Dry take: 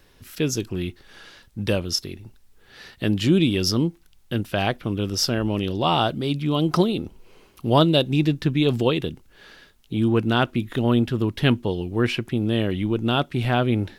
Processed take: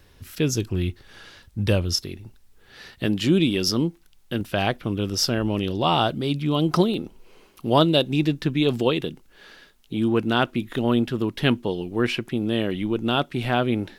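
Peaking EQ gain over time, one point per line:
peaking EQ 78 Hz 1.1 oct
+8.5 dB
from 2.03 s +1 dB
from 3.06 s -9.5 dB
from 4.41 s -1.5 dB
from 6.94 s -11.5 dB

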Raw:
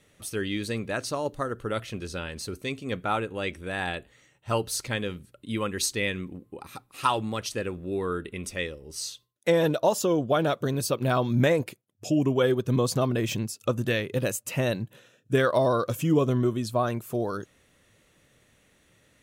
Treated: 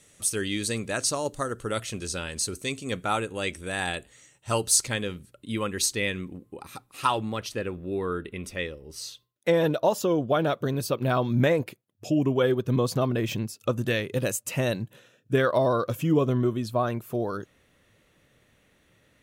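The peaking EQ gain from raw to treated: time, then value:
peaking EQ 7.9 kHz 1.3 oct
4.73 s +13.5 dB
5.14 s +3 dB
6.89 s +3 dB
7.38 s -5.5 dB
13.51 s -5.5 dB
13.99 s +2.5 dB
14.81 s +2.5 dB
15.39 s -6 dB

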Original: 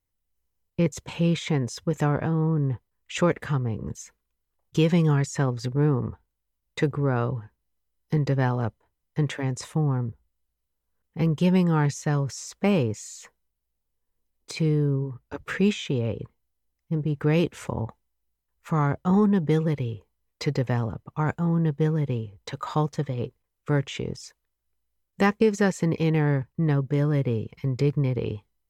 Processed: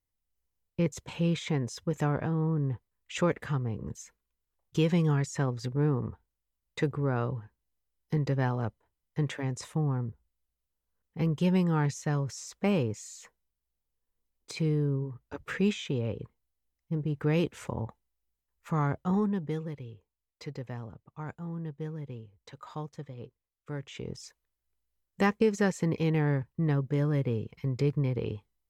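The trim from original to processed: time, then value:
18.97 s -5 dB
19.78 s -14 dB
23.78 s -14 dB
24.18 s -4.5 dB

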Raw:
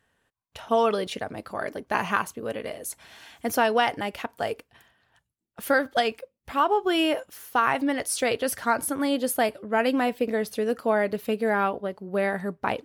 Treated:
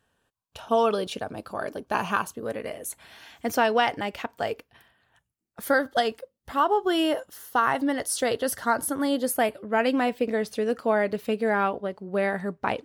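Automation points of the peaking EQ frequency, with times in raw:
peaking EQ -14 dB 0.21 oct
2.26 s 2 kHz
3.46 s 11 kHz
4.41 s 11 kHz
5.77 s 2.4 kHz
9.19 s 2.4 kHz
9.85 s 12 kHz

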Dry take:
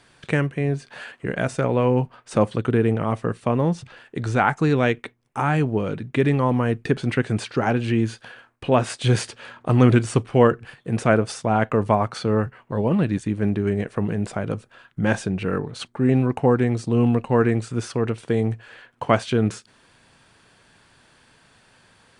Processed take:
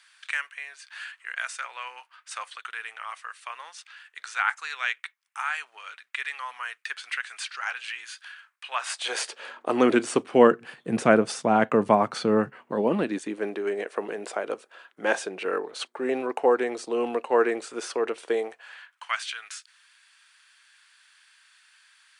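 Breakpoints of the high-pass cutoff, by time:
high-pass 24 dB/octave
8.68 s 1.3 kHz
9.42 s 350 Hz
10.92 s 170 Hz
12.44 s 170 Hz
13.56 s 380 Hz
18.34 s 380 Hz
19.03 s 1.4 kHz

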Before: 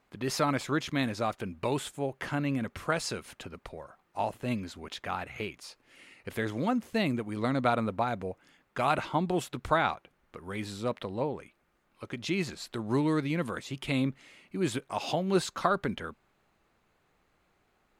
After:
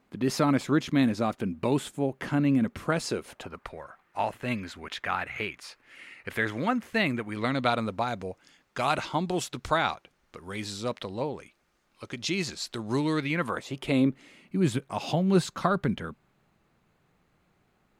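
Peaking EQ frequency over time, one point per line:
peaking EQ +9 dB 1.5 oct
2.99 s 230 Hz
3.74 s 1.8 kHz
7.30 s 1.8 kHz
7.86 s 5.6 kHz
13.03 s 5.6 kHz
13.59 s 700 Hz
14.65 s 150 Hz

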